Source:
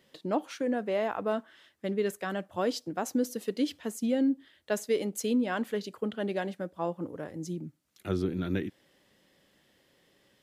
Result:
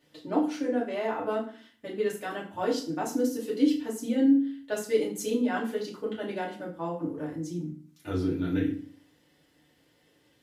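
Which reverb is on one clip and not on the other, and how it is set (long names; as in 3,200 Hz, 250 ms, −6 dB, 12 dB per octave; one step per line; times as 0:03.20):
feedback delay network reverb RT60 0.44 s, low-frequency decay 1.35×, high-frequency decay 0.85×, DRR −6 dB
level −6.5 dB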